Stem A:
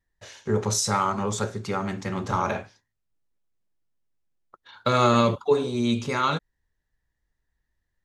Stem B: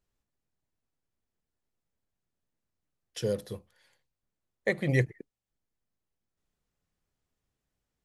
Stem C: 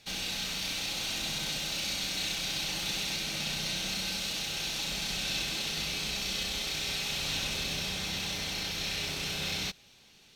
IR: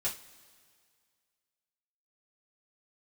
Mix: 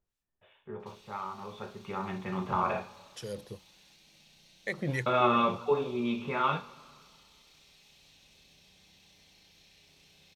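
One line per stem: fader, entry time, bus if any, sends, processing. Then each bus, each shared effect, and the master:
1.37 s -17 dB -> 2.10 s -6.5 dB, 0.20 s, send -3 dB, rippled Chebyshev low-pass 3.6 kHz, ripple 6 dB
-1.5 dB, 0.00 s, no send, harmonic tremolo 2.9 Hz, depth 70%, crossover 1.5 kHz
-18.5 dB, 0.80 s, no send, peaking EQ 1.4 kHz -8 dB 0.31 oct; compression 4:1, threshold -41 dBFS, peak gain reduction 10.5 dB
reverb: on, pre-delay 3 ms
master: none

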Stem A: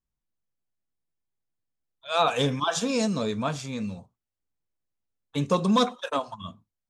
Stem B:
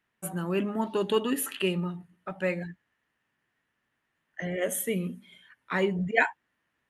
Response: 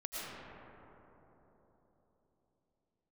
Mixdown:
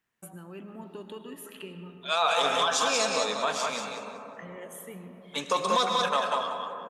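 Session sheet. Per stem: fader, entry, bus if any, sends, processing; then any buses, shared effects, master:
+3.0 dB, 0.00 s, send -6 dB, echo send -3.5 dB, high-pass 710 Hz 12 dB/octave
-6.0 dB, 0.00 s, send -7 dB, no echo send, compression 3:1, threshold -40 dBFS, peak gain reduction 16.5 dB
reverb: on, RT60 3.9 s, pre-delay 70 ms
echo: feedback delay 188 ms, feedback 25%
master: peak limiter -15 dBFS, peak gain reduction 8.5 dB

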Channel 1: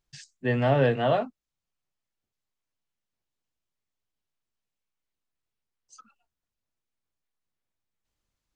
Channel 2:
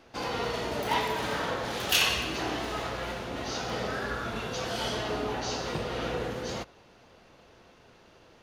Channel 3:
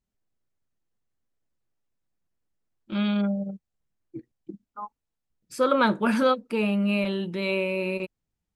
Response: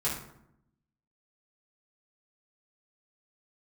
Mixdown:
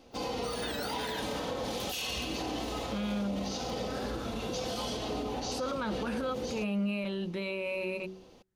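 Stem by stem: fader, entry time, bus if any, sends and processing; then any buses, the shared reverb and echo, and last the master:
-11.0 dB, 0.00 s, no send, spectrum inverted on a logarithmic axis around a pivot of 1.5 kHz; peaking EQ 1.7 kHz +15 dB 0.68 oct
+1.0 dB, 0.00 s, no send, peaking EQ 1.6 kHz -12 dB 1.1 oct; comb 3.9 ms, depth 37%
-3.5 dB, 0.00 s, no send, de-hum 94.08 Hz, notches 5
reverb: none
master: peak limiter -26 dBFS, peak gain reduction 16 dB

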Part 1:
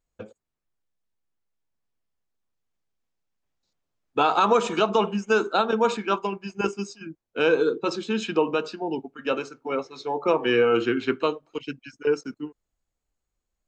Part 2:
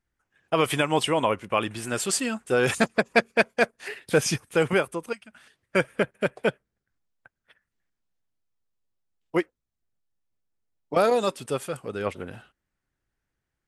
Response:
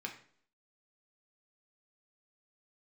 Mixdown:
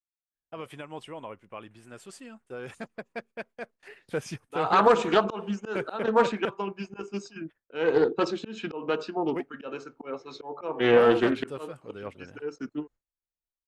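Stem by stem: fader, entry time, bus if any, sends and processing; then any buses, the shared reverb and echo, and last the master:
+1.5 dB, 0.35 s, no send, peaking EQ 180 Hz -2.5 dB 1 oct; slow attack 282 ms
3.64 s -16.5 dB -> 3.93 s -9.5 dB, 0.00 s, no send, none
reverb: none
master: gate with hold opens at -48 dBFS; treble shelf 3.2 kHz -8.5 dB; loudspeaker Doppler distortion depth 0.26 ms

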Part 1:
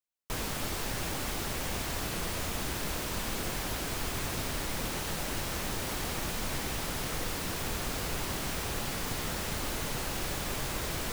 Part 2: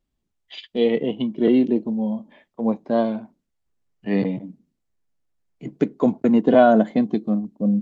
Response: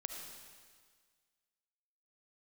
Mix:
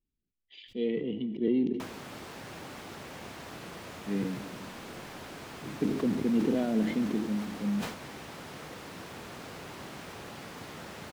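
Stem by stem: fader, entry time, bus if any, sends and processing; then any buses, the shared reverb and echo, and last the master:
-6.0 dB, 1.50 s, no send, high-pass 130 Hz 12 dB/octave
-12.5 dB, 0.00 s, muted 1.73–4.05 s, send -8 dB, high-order bell 950 Hz -13.5 dB; decay stretcher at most 63 dB/s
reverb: on, RT60 1.7 s, pre-delay 30 ms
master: low-pass 2.7 kHz 6 dB/octave; decay stretcher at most 84 dB/s

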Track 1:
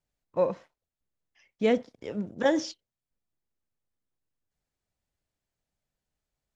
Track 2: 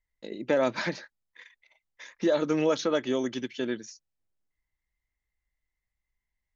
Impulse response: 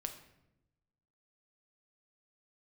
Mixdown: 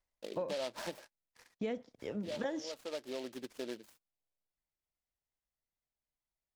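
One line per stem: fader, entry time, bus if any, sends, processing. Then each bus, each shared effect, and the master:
-3.0 dB, 0.00 s, no send, gate -57 dBFS, range -12 dB
1.63 s -6 dB -> 2.30 s -17.5 dB, 0.00 s, no send, peaking EQ 670 Hz +15 dB 1.9 oct; delay time shaken by noise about 3.1 kHz, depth 0.091 ms; auto duck -11 dB, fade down 0.35 s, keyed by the first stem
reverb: none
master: compression 6:1, threshold -35 dBFS, peak gain reduction 12.5 dB

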